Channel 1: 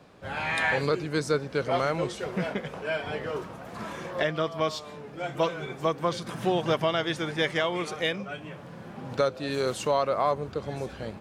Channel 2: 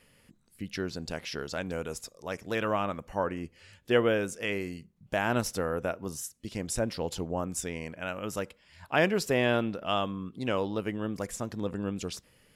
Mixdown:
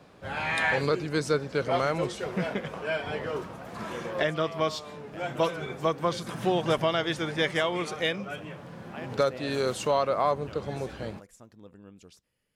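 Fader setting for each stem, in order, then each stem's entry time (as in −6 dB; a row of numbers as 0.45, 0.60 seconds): 0.0, −17.0 decibels; 0.00, 0.00 seconds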